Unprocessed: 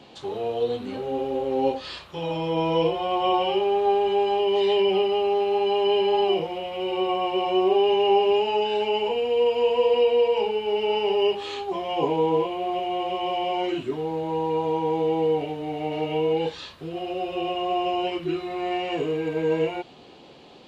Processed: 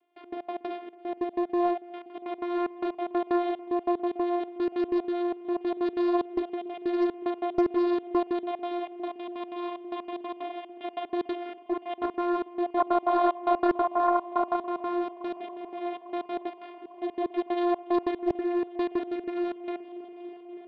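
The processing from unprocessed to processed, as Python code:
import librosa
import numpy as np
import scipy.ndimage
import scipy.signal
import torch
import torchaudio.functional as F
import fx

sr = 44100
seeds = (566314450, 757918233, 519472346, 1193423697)

y = fx.cvsd(x, sr, bps=16000)
y = fx.low_shelf(y, sr, hz=290.0, db=-12.0)
y = fx.notch(y, sr, hz=1600.0, q=9.2)
y = fx.rider(y, sr, range_db=5, speed_s=2.0)
y = fx.spec_paint(y, sr, seeds[0], shape='noise', start_s=12.76, length_s=1.8, low_hz=460.0, high_hz=1100.0, level_db=-21.0)
y = fx.vocoder(y, sr, bands=16, carrier='saw', carrier_hz=350.0)
y = fx.step_gate(y, sr, bpm=186, pattern='..x.x.x.xxx', floor_db=-24.0, edge_ms=4.5)
y = fx.echo_heads(y, sr, ms=283, heads='first and third', feedback_pct=74, wet_db=-21)
y = fx.doppler_dist(y, sr, depth_ms=0.43)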